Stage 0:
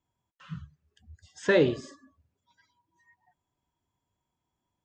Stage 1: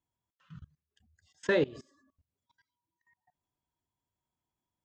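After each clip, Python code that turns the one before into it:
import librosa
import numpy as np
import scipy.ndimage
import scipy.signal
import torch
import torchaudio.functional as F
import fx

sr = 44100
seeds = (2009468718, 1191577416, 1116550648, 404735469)

y = fx.level_steps(x, sr, step_db=22)
y = F.gain(torch.from_numpy(y), -2.5).numpy()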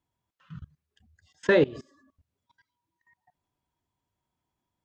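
y = fx.high_shelf(x, sr, hz=5600.0, db=-9.0)
y = F.gain(torch.from_numpy(y), 6.5).numpy()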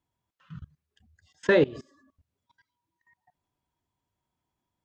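y = x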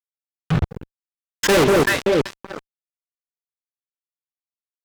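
y = fx.echo_alternate(x, sr, ms=191, hz=890.0, feedback_pct=55, wet_db=-10.5)
y = fx.fuzz(y, sr, gain_db=45.0, gate_db=-47.0)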